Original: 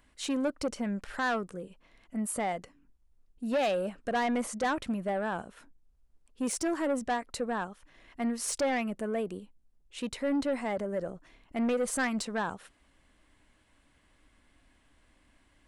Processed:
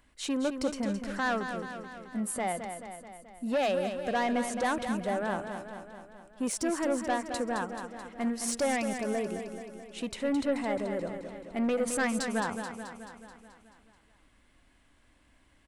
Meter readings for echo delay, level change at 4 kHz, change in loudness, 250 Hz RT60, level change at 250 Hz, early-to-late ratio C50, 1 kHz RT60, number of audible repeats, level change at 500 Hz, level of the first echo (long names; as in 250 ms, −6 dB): 216 ms, +1.0 dB, +0.5 dB, no reverb audible, +1.0 dB, no reverb audible, no reverb audible, 7, +1.0 dB, −8.0 dB